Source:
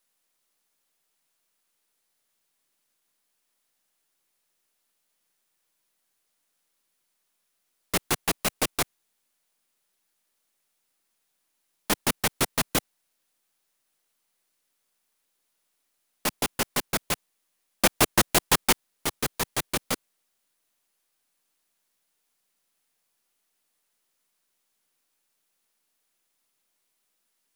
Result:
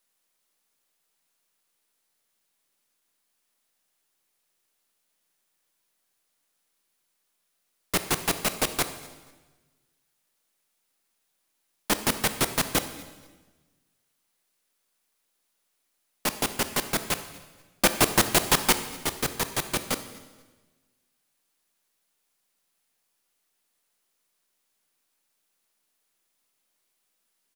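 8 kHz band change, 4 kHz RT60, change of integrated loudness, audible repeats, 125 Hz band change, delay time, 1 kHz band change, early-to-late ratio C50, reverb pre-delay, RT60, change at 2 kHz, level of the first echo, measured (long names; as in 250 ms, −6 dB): +0.5 dB, 1.2 s, +0.5 dB, 2, +0.5 dB, 240 ms, +0.5 dB, 11.0 dB, 20 ms, 1.3 s, +0.5 dB, −24.0 dB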